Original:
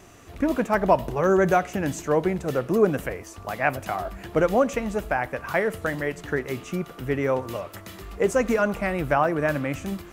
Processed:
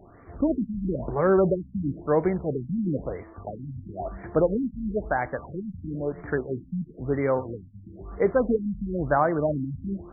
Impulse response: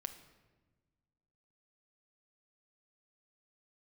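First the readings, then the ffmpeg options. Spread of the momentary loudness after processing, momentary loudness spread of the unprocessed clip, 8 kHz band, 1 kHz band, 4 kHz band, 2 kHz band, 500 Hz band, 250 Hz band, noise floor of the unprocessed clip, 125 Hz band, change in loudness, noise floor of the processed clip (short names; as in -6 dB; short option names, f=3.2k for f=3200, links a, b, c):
15 LU, 10 LU, under -40 dB, -5.0 dB, under -40 dB, -8.5 dB, -2.5 dB, -0.5 dB, -44 dBFS, 0.0 dB, -2.0 dB, -49 dBFS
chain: -af "highshelf=f=3.7k:t=q:w=3:g=8.5,afftfilt=real='re*lt(b*sr/1024,250*pow(2400/250,0.5+0.5*sin(2*PI*1*pts/sr)))':imag='im*lt(b*sr/1024,250*pow(2400/250,0.5+0.5*sin(2*PI*1*pts/sr)))':win_size=1024:overlap=0.75"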